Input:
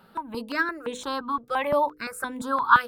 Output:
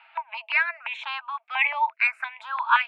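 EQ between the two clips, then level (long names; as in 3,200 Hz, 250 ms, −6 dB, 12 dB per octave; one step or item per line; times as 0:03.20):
dynamic equaliser 990 Hz, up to −5 dB, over −33 dBFS, Q 0.71
Chebyshev high-pass with heavy ripple 640 Hz, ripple 9 dB
low-pass with resonance 2,400 Hz, resonance Q 5.2
+6.0 dB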